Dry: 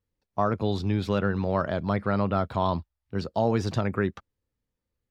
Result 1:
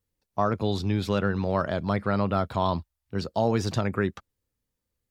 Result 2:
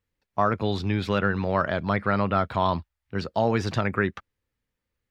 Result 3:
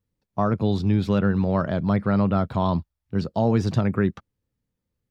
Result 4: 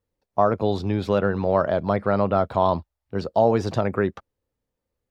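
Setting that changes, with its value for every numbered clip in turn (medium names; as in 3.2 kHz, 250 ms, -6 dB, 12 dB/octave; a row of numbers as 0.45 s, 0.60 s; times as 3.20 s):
peaking EQ, frequency: 16 kHz, 2 kHz, 160 Hz, 610 Hz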